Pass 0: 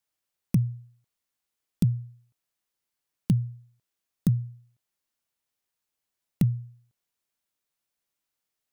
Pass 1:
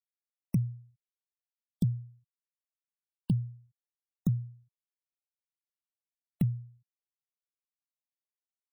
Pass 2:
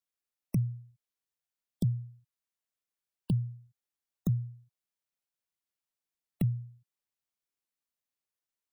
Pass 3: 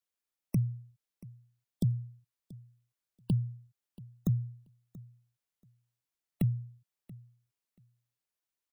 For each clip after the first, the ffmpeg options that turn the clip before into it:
ffmpeg -i in.wav -af "afftfilt=real='re*gte(hypot(re,im),0.01)':imag='im*gte(hypot(re,im),0.01)':win_size=1024:overlap=0.75,volume=-5dB" out.wav
ffmpeg -i in.wav -filter_complex "[0:a]acrossover=split=140|3000[link_01][link_02][link_03];[link_02]acompressor=threshold=-35dB:ratio=6[link_04];[link_01][link_04][link_03]amix=inputs=3:normalize=0,volume=2.5dB" out.wav
ffmpeg -i in.wav -af "aecho=1:1:682|1364:0.0944|0.0151" out.wav

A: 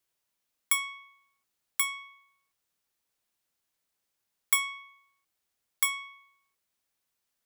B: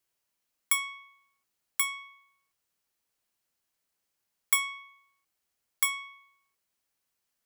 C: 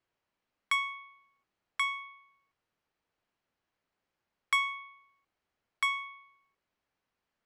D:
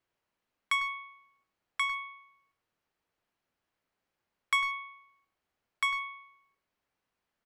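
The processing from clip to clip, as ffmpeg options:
ffmpeg -i in.wav -af "bandreject=frequency=3600:width=19" out.wav
ffmpeg -i in.wav -af "aemphasis=mode=reproduction:type=75fm,adynamicsmooth=sensitivity=3.5:basefreq=5700,volume=4.5dB" out.wav
ffmpeg -i in.wav -filter_complex "[0:a]asplit=2[link_01][link_02];[link_02]adelay=100,highpass=300,lowpass=3400,asoftclip=type=hard:threshold=-25dB,volume=-11dB[link_03];[link_01][link_03]amix=inputs=2:normalize=0" out.wav

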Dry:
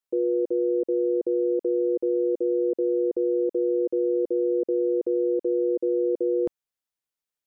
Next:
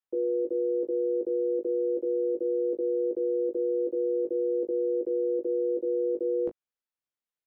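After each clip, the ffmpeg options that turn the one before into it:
ffmpeg -i in.wav -filter_complex "[0:a]bass=frequency=250:gain=-9,treble=frequency=4000:gain=-9,acrossover=split=300[link_01][link_02];[link_01]acontrast=63[link_03];[link_03][link_02]amix=inputs=2:normalize=0,aecho=1:1:18|37:0.668|0.224,volume=-5.5dB" out.wav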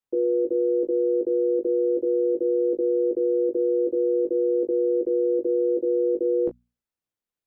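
ffmpeg -i in.wav -af "acontrast=45,lowshelf=frequency=490:gain=10,bandreject=frequency=60:width_type=h:width=6,bandreject=frequency=120:width_type=h:width=6,bandreject=frequency=180:width_type=h:width=6,bandreject=frequency=240:width_type=h:width=6,volume=-6dB" out.wav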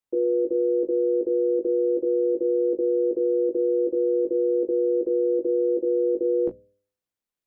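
ffmpeg -i in.wav -af "bandreject=frequency=101.3:width_type=h:width=4,bandreject=frequency=202.6:width_type=h:width=4,bandreject=frequency=303.9:width_type=h:width=4,bandreject=frequency=405.2:width_type=h:width=4,bandreject=frequency=506.5:width_type=h:width=4,bandreject=frequency=607.8:width_type=h:width=4" out.wav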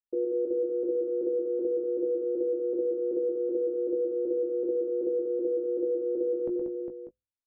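ffmpeg -i in.wav -filter_complex "[0:a]anlmdn=10,asplit=2[link_01][link_02];[link_02]aecho=0:1:120|187|406|594:0.473|0.531|0.473|0.211[link_03];[link_01][link_03]amix=inputs=2:normalize=0,volume=-5.5dB" out.wav

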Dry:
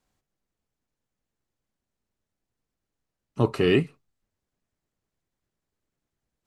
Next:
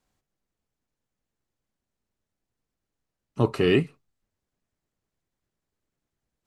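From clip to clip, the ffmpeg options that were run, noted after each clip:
ffmpeg -i in.wav -af anull out.wav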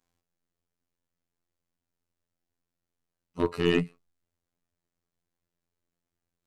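ffmpeg -i in.wav -af "afftfilt=real='hypot(re,im)*cos(PI*b)':imag='0':win_size=2048:overlap=0.75,aeval=exprs='0.398*(cos(1*acos(clip(val(0)/0.398,-1,1)))-cos(1*PI/2))+0.02*(cos(8*acos(clip(val(0)/0.398,-1,1)))-cos(8*PI/2))':channel_layout=same" out.wav

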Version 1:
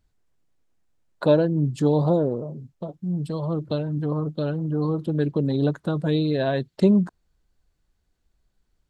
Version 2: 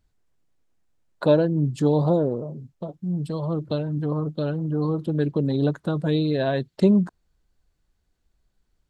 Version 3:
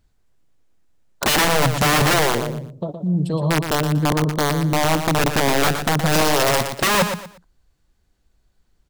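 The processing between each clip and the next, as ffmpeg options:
ffmpeg -i in.wav -af anull out.wav
ffmpeg -i in.wav -af "aeval=exprs='(mod(7.94*val(0)+1,2)-1)/7.94':channel_layout=same,aecho=1:1:118|236|354:0.398|0.104|0.0269,volume=6dB" out.wav

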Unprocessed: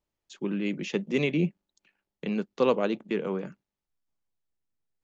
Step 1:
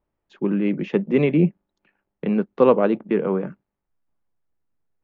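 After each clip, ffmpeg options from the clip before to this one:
ffmpeg -i in.wav -af "lowpass=1600,volume=8.5dB" out.wav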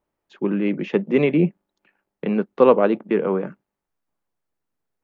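ffmpeg -i in.wav -af "lowshelf=frequency=150:gain=-10.5,volume=2.5dB" out.wav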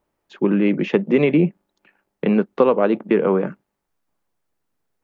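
ffmpeg -i in.wav -af "acompressor=threshold=-17dB:ratio=6,volume=5.5dB" out.wav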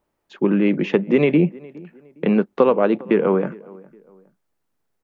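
ffmpeg -i in.wav -filter_complex "[0:a]asplit=2[link_01][link_02];[link_02]adelay=411,lowpass=frequency=1900:poles=1,volume=-22.5dB,asplit=2[link_03][link_04];[link_04]adelay=411,lowpass=frequency=1900:poles=1,volume=0.35[link_05];[link_01][link_03][link_05]amix=inputs=3:normalize=0" out.wav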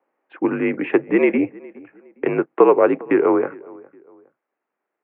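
ffmpeg -i in.wav -af "highpass=frequency=380:width_type=q:width=0.5412,highpass=frequency=380:width_type=q:width=1.307,lowpass=frequency=2500:width_type=q:width=0.5176,lowpass=frequency=2500:width_type=q:width=0.7071,lowpass=frequency=2500:width_type=q:width=1.932,afreqshift=-58,volume=4dB" out.wav

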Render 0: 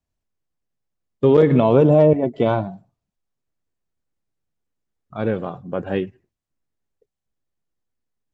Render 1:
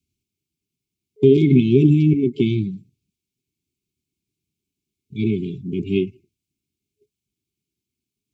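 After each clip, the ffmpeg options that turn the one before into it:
ffmpeg -i in.wav -filter_complex "[0:a]afftfilt=real='re*(1-between(b*sr/4096,430,2100))':imag='im*(1-between(b*sr/4096,430,2100))':win_size=4096:overlap=0.75,highpass=79,asplit=2[link_01][link_02];[link_02]acompressor=threshold=-26dB:ratio=6,volume=-2dB[link_03];[link_01][link_03]amix=inputs=2:normalize=0,volume=1.5dB" out.wav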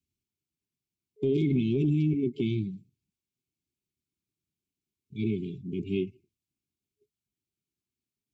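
ffmpeg -i in.wav -af "alimiter=limit=-10dB:level=0:latency=1:release=11,volume=-8.5dB" out.wav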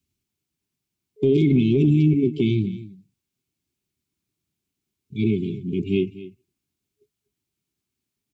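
ffmpeg -i in.wav -af "aecho=1:1:245:0.141,volume=8dB" out.wav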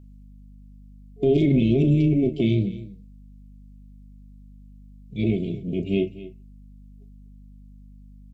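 ffmpeg -i in.wav -filter_complex "[0:a]tremolo=f=280:d=0.333,aeval=exprs='val(0)+0.00562*(sin(2*PI*50*n/s)+sin(2*PI*2*50*n/s)/2+sin(2*PI*3*50*n/s)/3+sin(2*PI*4*50*n/s)/4+sin(2*PI*5*50*n/s)/5)':channel_layout=same,asplit=2[link_01][link_02];[link_02]adelay=35,volume=-10.5dB[link_03];[link_01][link_03]amix=inputs=2:normalize=0" out.wav

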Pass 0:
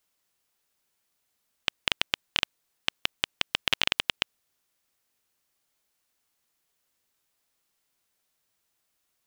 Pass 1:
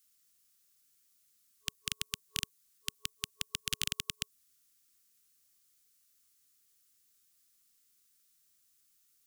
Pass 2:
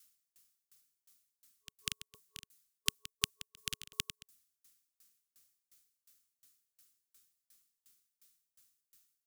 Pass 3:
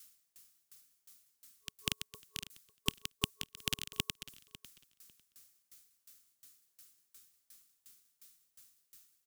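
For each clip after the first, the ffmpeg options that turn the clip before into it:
ffmpeg -i in.wav -filter_complex "[0:a]afftfilt=real='re*(1-between(b*sr/4096,420,1100))':imag='im*(1-between(b*sr/4096,420,1100))':win_size=4096:overlap=0.75,bass=frequency=250:gain=3,treble=frequency=4000:gain=12,acrossover=split=240|6400[link_01][link_02][link_03];[link_02]alimiter=limit=-12dB:level=0:latency=1:release=188[link_04];[link_01][link_04][link_03]amix=inputs=3:normalize=0,volume=-4.5dB" out.wav
ffmpeg -i in.wav -af "aeval=exprs='val(0)*pow(10,-33*if(lt(mod(2.8*n/s,1),2*abs(2.8)/1000),1-mod(2.8*n/s,1)/(2*abs(2.8)/1000),(mod(2.8*n/s,1)-2*abs(2.8)/1000)/(1-2*abs(2.8)/1000))/20)':channel_layout=same,volume=8dB" out.wav
ffmpeg -i in.wav -af "aeval=exprs='(tanh(14.1*val(0)+0.2)-tanh(0.2))/14.1':channel_layout=same,aecho=1:1:549|1098:0.126|0.0214,volume=8dB" out.wav

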